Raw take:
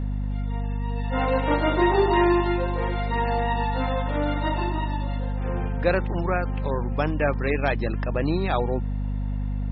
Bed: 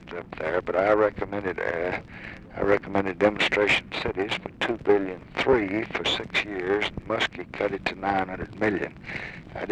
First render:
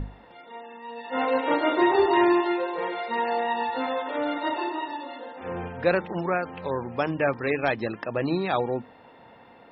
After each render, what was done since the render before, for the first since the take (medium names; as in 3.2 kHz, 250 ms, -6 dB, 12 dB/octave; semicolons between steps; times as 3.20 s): hum notches 50/100/150/200/250/300 Hz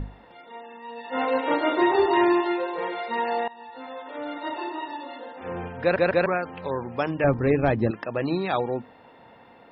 3.48–5.14 s: fade in, from -21 dB; 5.81 s: stutter in place 0.15 s, 3 plays; 7.24–7.91 s: tilt EQ -4 dB/octave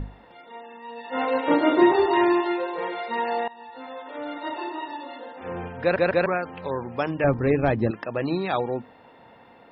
1.48–1.93 s: peaking EQ 190 Hz +10 dB 1.9 oct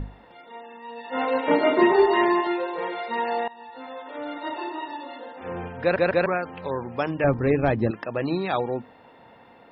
1.46–2.47 s: comb 4.7 ms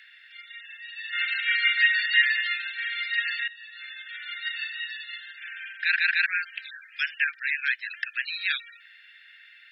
steep high-pass 1.5 kHz 96 dB/octave; peaking EQ 2.7 kHz +10 dB 2.6 oct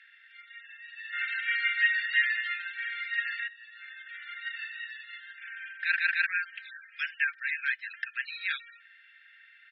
low-pass 1.3 kHz 6 dB/octave; comb 4.4 ms, depth 47%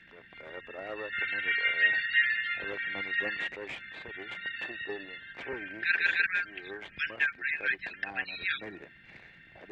add bed -19.5 dB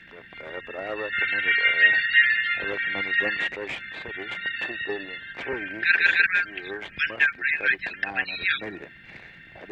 trim +7.5 dB